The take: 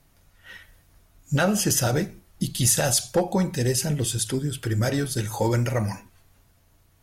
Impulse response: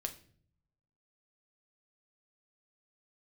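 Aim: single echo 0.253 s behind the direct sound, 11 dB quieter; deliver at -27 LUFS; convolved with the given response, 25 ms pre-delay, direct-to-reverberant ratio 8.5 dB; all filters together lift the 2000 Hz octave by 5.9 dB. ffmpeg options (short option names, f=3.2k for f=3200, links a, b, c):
-filter_complex "[0:a]equalizer=f=2k:t=o:g=8,aecho=1:1:253:0.282,asplit=2[a][b];[1:a]atrim=start_sample=2205,adelay=25[c];[b][c]afir=irnorm=-1:irlink=0,volume=-7.5dB[d];[a][d]amix=inputs=2:normalize=0,volume=-5dB"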